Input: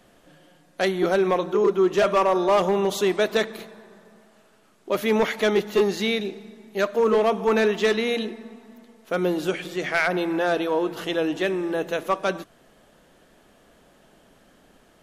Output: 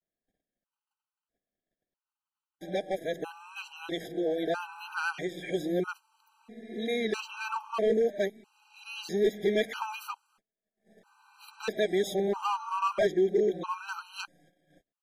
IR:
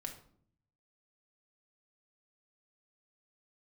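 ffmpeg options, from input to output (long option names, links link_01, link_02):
-af "areverse,agate=range=-32dB:threshold=-51dB:ratio=16:detection=peak,afftfilt=real='re*gt(sin(2*PI*0.77*pts/sr)*(1-2*mod(floor(b*sr/1024/790),2)),0)':imag='im*gt(sin(2*PI*0.77*pts/sr)*(1-2*mod(floor(b*sr/1024/790),2)),0)':win_size=1024:overlap=0.75,volume=-5.5dB"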